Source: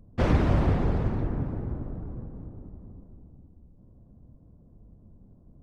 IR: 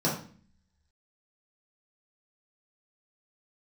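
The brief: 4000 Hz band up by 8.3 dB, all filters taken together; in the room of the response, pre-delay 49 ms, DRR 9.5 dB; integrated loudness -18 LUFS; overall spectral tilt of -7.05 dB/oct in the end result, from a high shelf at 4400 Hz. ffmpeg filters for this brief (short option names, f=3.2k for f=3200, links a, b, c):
-filter_complex "[0:a]equalizer=f=4k:t=o:g=8,highshelf=f=4.4k:g=5.5,asplit=2[a][b];[1:a]atrim=start_sample=2205,adelay=49[c];[b][c]afir=irnorm=-1:irlink=0,volume=-20dB[d];[a][d]amix=inputs=2:normalize=0,volume=8dB"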